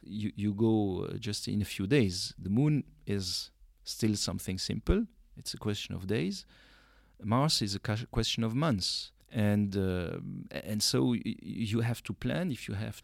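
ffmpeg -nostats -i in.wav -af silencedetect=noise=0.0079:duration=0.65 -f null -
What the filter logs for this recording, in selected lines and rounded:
silence_start: 6.41
silence_end: 7.22 | silence_duration: 0.81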